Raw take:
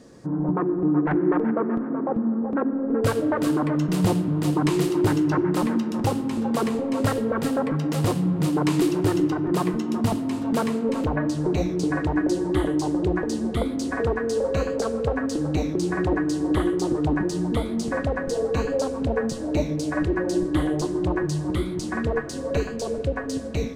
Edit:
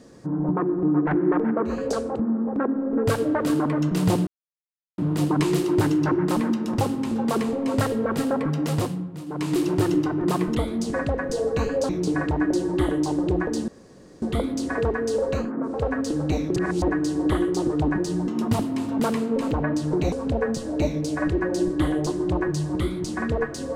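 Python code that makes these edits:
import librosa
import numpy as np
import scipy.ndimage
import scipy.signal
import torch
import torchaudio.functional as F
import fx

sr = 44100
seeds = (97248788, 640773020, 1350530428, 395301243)

y = fx.edit(x, sr, fx.swap(start_s=1.75, length_s=0.32, other_s=14.64, other_length_s=0.35, crossfade_s=0.24),
    fx.insert_silence(at_s=4.24, length_s=0.71),
    fx.fade_down_up(start_s=7.95, length_s=0.99, db=-13.5, fade_s=0.43),
    fx.swap(start_s=9.81, length_s=1.84, other_s=17.53, other_length_s=1.34),
    fx.insert_room_tone(at_s=13.44, length_s=0.54),
    fx.reverse_span(start_s=15.81, length_s=0.26), tone=tone)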